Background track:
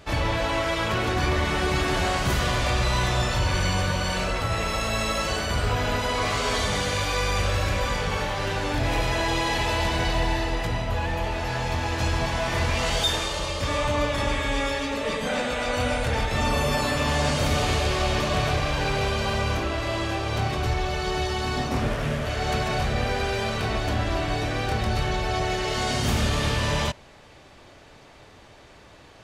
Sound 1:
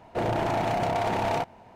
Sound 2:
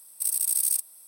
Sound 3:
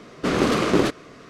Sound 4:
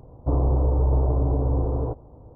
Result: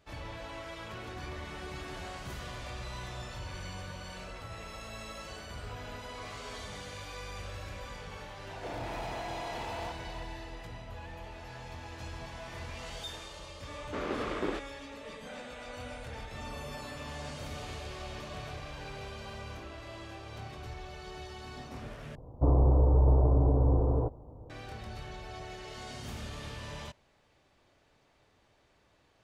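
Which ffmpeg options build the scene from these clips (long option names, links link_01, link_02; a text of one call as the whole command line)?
ffmpeg -i bed.wav -i cue0.wav -i cue1.wav -i cue2.wav -i cue3.wav -filter_complex "[0:a]volume=-18dB[link_01];[1:a]asplit=2[link_02][link_03];[link_03]highpass=frequency=720:poles=1,volume=29dB,asoftclip=type=tanh:threshold=-21.5dB[link_04];[link_02][link_04]amix=inputs=2:normalize=0,lowpass=frequency=2700:poles=1,volume=-6dB[link_05];[3:a]bass=frequency=250:gain=-9,treble=frequency=4000:gain=-13[link_06];[link_01]asplit=2[link_07][link_08];[link_07]atrim=end=22.154[link_09];[4:a]atrim=end=2.35,asetpts=PTS-STARTPTS,volume=-2.5dB[link_10];[link_08]atrim=start=24.496[link_11];[link_05]atrim=end=1.75,asetpts=PTS-STARTPTS,volume=-15dB,afade=type=in:duration=0.004:curve=hsin,afade=type=out:start_time=1.746:duration=0.004:curve=hsin,adelay=8480[link_12];[link_06]atrim=end=1.29,asetpts=PTS-STARTPTS,volume=-13dB,afade=type=in:duration=0.004:curve=hsin,afade=type=out:start_time=1.286:duration=0.004:curve=hsin,adelay=13690[link_13];[link_09][link_10]acrossfade=duration=0.004:curve1=hsin:curve2=hsin[link_14];[link_14][link_11]acrossfade=duration=0.004:curve1=hsin:curve2=hsin[link_15];[link_15][link_12][link_13]amix=inputs=3:normalize=0" out.wav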